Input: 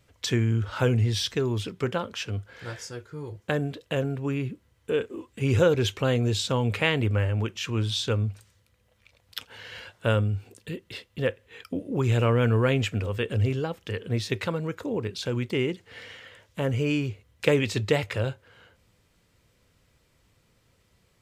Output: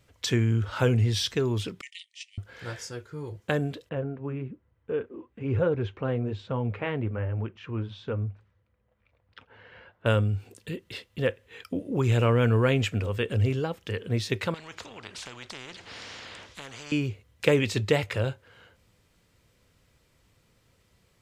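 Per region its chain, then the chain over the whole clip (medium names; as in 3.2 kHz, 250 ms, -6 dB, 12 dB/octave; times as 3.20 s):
1.81–2.38 s: gate -31 dBFS, range -14 dB + brick-wall FIR band-pass 1.8–9.9 kHz + treble shelf 5.3 kHz +7 dB
3.89–10.06 s: low-pass 1.6 kHz + flange 1.1 Hz, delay 0.3 ms, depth 5.6 ms, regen -63%
14.54–16.92 s: low-pass 5.1 kHz + compression 1.5:1, threshold -45 dBFS + spectrum-flattening compressor 4:1
whole clip: none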